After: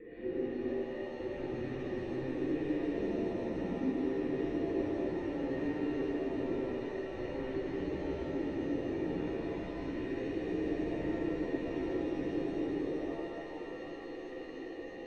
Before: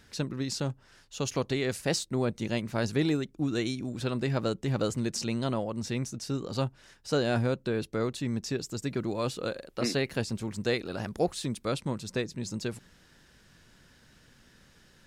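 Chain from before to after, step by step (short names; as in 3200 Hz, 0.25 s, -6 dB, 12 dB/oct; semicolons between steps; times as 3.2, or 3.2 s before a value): band inversion scrambler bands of 500 Hz; limiter -24 dBFS, peak gain reduction 10 dB; sample leveller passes 3; phaser 0.66 Hz, delay 4.1 ms, feedback 27%; hard clip -38.5 dBFS, distortion -6 dB; vocal tract filter e; resonant low shelf 440 Hz +10 dB, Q 3; thin delay 0.394 s, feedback 80%, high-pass 2500 Hz, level -3.5 dB; shimmer reverb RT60 3.1 s, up +7 st, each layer -8 dB, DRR -9 dB; gain -1 dB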